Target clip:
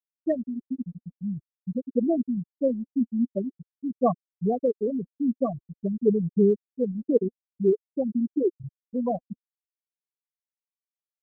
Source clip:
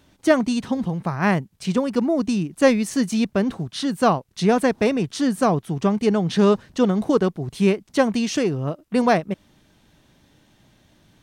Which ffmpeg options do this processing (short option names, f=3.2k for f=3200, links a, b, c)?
-af "equalizer=f=86:t=o:w=0.8:g=4.5,afftfilt=real='re*gte(hypot(re,im),0.794)':imag='im*gte(hypot(re,im),0.794)':win_size=1024:overlap=0.75,adynamicequalizer=threshold=0.0282:dfrequency=400:dqfactor=1.7:tfrequency=400:tqfactor=1.7:attack=5:release=100:ratio=0.375:range=3:mode=boostabove:tftype=bell,bandreject=f=2.1k:w=26,aphaser=in_gain=1:out_gain=1:delay=4.2:decay=0.4:speed=0.48:type=sinusoidal,volume=-8dB"